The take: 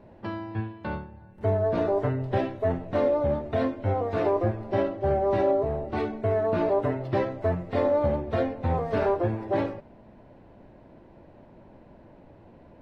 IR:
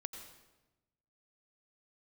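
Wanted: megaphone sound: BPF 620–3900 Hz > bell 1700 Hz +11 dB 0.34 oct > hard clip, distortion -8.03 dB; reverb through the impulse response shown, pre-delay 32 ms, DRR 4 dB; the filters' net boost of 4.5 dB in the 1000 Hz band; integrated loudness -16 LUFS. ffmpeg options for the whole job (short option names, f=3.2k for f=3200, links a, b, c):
-filter_complex "[0:a]equalizer=f=1k:t=o:g=7,asplit=2[a][b];[1:a]atrim=start_sample=2205,adelay=32[c];[b][c]afir=irnorm=-1:irlink=0,volume=-2dB[d];[a][d]amix=inputs=2:normalize=0,highpass=620,lowpass=3.9k,equalizer=f=1.7k:t=o:w=0.34:g=11,asoftclip=type=hard:threshold=-25.5dB,volume=14dB"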